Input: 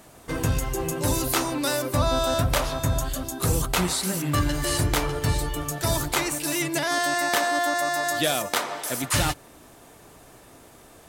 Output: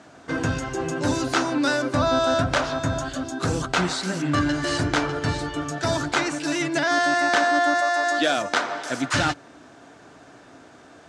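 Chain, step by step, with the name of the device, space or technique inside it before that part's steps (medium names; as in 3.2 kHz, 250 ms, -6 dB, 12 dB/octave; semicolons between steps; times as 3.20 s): car door speaker (cabinet simulation 98–6700 Hz, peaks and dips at 280 Hz +7 dB, 690 Hz +4 dB, 1.5 kHz +9 dB); 7.80–8.36 s: high-pass 450 Hz -> 170 Hz 24 dB/octave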